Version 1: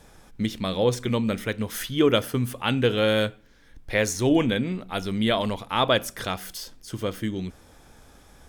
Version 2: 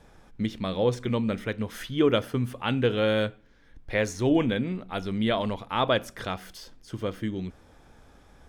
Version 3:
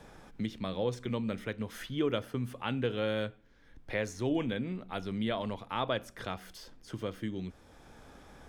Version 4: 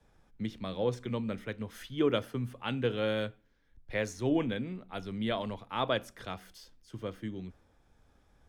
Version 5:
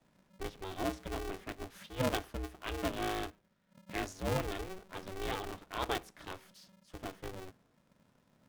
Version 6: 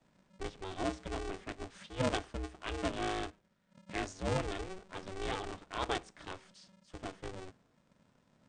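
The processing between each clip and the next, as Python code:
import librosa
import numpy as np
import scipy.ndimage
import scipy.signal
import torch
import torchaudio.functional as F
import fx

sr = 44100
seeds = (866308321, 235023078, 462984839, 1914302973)

y1 = fx.lowpass(x, sr, hz=2900.0, slope=6)
y1 = F.gain(torch.from_numpy(y1), -2.0).numpy()
y2 = fx.band_squash(y1, sr, depth_pct=40)
y2 = F.gain(torch.from_numpy(y2), -7.5).numpy()
y3 = fx.band_widen(y2, sr, depth_pct=70)
y4 = y3 * np.sign(np.sin(2.0 * np.pi * 190.0 * np.arange(len(y3)) / sr))
y4 = F.gain(torch.from_numpy(y4), -5.0).numpy()
y5 = fx.brickwall_lowpass(y4, sr, high_hz=9300.0)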